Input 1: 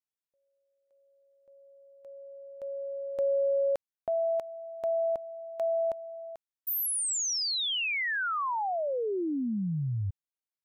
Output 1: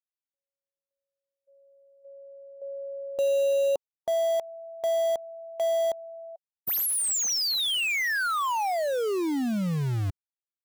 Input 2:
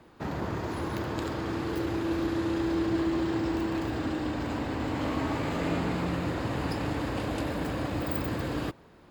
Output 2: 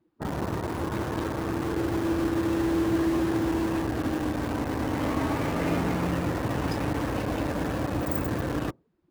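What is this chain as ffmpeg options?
-filter_complex "[0:a]afftdn=nr=24:nf=-41,asplit=2[a][b];[b]acrusher=bits=4:mix=0:aa=0.000001,volume=-8dB[c];[a][c]amix=inputs=2:normalize=0"

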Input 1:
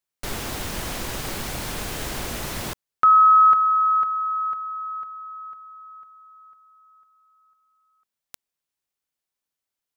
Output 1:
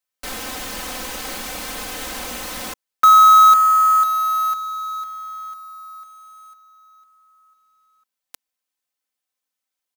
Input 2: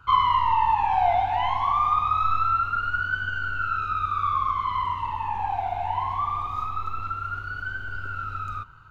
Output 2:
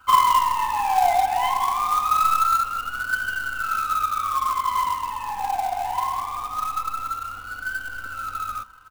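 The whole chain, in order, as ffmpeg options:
-filter_complex "[0:a]lowshelf=f=230:g=-10.5,aecho=1:1:3.9:0.8,acrossover=split=540[a][b];[b]acrusher=bits=3:mode=log:mix=0:aa=0.000001[c];[a][c]amix=inputs=2:normalize=0"

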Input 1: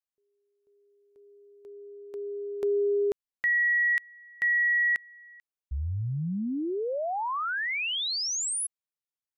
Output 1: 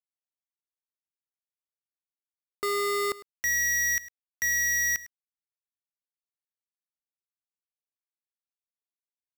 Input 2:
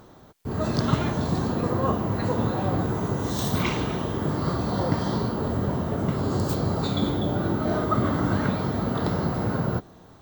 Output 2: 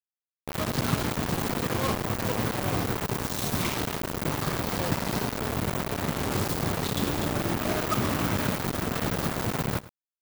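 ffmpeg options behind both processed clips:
-af "acrusher=bits=3:mix=0:aa=0.000001,aecho=1:1:104:0.126,volume=-4.5dB"

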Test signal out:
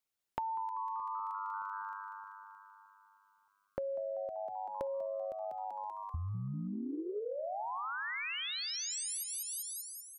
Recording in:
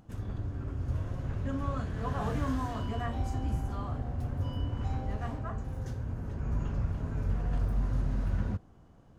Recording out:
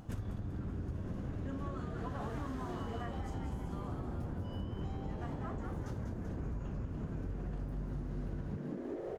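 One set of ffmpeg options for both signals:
-filter_complex "[0:a]asplit=8[a][b][c][d][e][f][g][h];[b]adelay=193,afreqshift=100,volume=-6dB[i];[c]adelay=386,afreqshift=200,volume=-10.9dB[j];[d]adelay=579,afreqshift=300,volume=-15.8dB[k];[e]adelay=772,afreqshift=400,volume=-20.6dB[l];[f]adelay=965,afreqshift=500,volume=-25.5dB[m];[g]adelay=1158,afreqshift=600,volume=-30.4dB[n];[h]adelay=1351,afreqshift=700,volume=-35.3dB[o];[a][i][j][k][l][m][n][o]amix=inputs=8:normalize=0,acompressor=threshold=-42dB:ratio=12,volume=6dB"

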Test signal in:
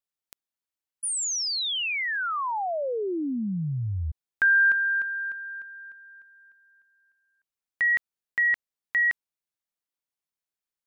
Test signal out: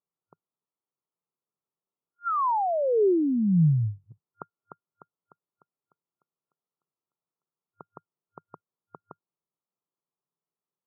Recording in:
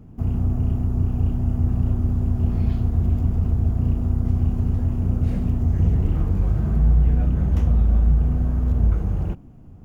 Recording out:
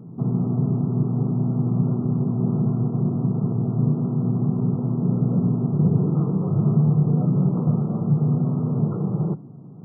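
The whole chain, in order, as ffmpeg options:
-af "afftfilt=real='re*between(b*sr/4096,100,1400)':imag='im*between(b*sr/4096,100,1400)':win_size=4096:overlap=0.75,equalizer=f=160:t=o:w=0.67:g=10,equalizer=f=400:t=o:w=0.67:g=8,equalizer=f=1k:t=o:w=0.67:g=4"

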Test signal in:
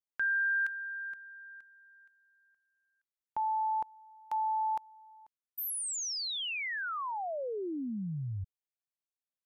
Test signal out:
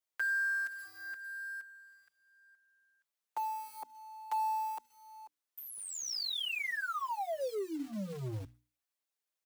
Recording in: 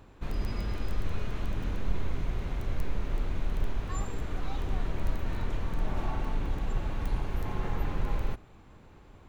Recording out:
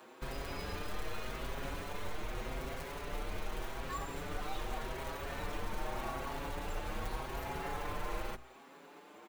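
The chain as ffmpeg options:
-filter_complex "[0:a]acrossover=split=240|1200[a][b][c];[a]acrusher=bits=5:mix=0:aa=0.5[d];[d][b][c]amix=inputs=3:normalize=0,acrossover=split=430|5400[e][f][g];[e]acompressor=threshold=-37dB:ratio=6[h];[f]acompressor=threshold=-36dB:ratio=4[i];[g]acompressor=threshold=-52dB:ratio=8[j];[h][i][j]amix=inputs=3:normalize=0,lowshelf=f=110:g=-2.5,bandreject=f=60:t=h:w=6,bandreject=f=120:t=h:w=6,bandreject=f=180:t=h:w=6,bandreject=f=240:t=h:w=6,bandreject=f=300:t=h:w=6,asplit=2[k][l];[l]acompressor=threshold=-45dB:ratio=10:attack=0.69:release=316:knee=1:detection=peak,volume=-1dB[m];[k][m]amix=inputs=2:normalize=0,acrusher=bits=4:mode=log:mix=0:aa=0.000001,asplit=2[n][o];[o]adelay=6,afreqshift=0.85[p];[n][p]amix=inputs=2:normalize=1,volume=2dB"

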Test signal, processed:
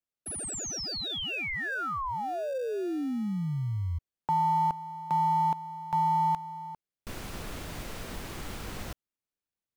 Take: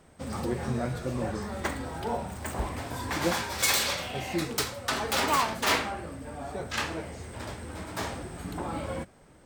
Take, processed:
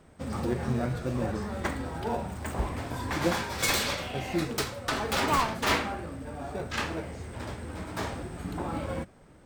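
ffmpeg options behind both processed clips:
-filter_complex "[0:a]asplit=2[a][b];[b]acrusher=samples=42:mix=1:aa=0.000001,volume=-11.5dB[c];[a][c]amix=inputs=2:normalize=0,highshelf=f=4.1k:g=-5"

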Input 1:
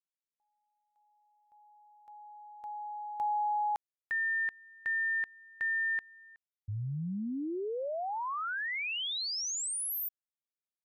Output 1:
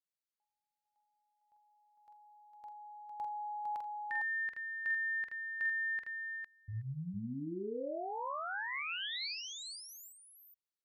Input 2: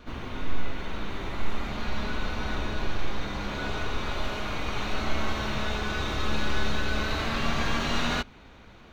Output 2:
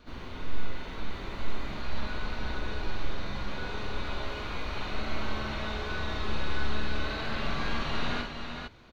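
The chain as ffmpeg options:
-filter_complex "[0:a]acrossover=split=3900[a][b];[b]acompressor=threshold=-51dB:ratio=4:attack=1:release=60[c];[a][c]amix=inputs=2:normalize=0,equalizer=f=4.4k:t=o:w=0.38:g=5.5,asplit=2[d][e];[e]aecho=0:1:45|47|83|455:0.531|0.237|0.141|0.562[f];[d][f]amix=inputs=2:normalize=0,volume=-6.5dB"

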